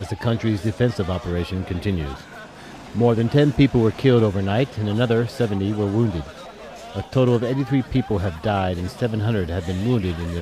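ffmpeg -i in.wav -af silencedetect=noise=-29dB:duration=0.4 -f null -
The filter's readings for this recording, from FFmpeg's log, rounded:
silence_start: 2.21
silence_end: 2.95 | silence_duration: 0.74
silence_start: 6.30
silence_end: 6.95 | silence_duration: 0.65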